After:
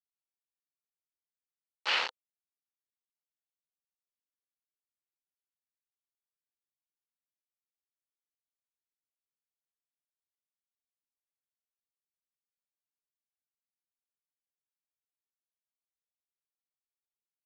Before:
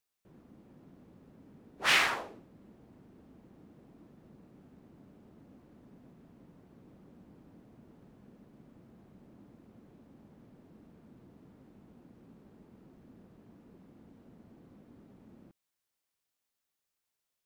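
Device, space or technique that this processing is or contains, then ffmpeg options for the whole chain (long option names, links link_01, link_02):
hand-held game console: -af "acrusher=bits=3:mix=0:aa=0.000001,highpass=410,equalizer=frequency=500:width_type=q:width=4:gain=9,equalizer=frequency=900:width_type=q:width=4:gain=8,equalizer=frequency=1400:width_type=q:width=4:gain=5,equalizer=frequency=2900:width_type=q:width=4:gain=7,equalizer=frequency=4400:width_type=q:width=4:gain=7,lowpass=frequency=5000:width=0.5412,lowpass=frequency=5000:width=1.3066,volume=-8.5dB"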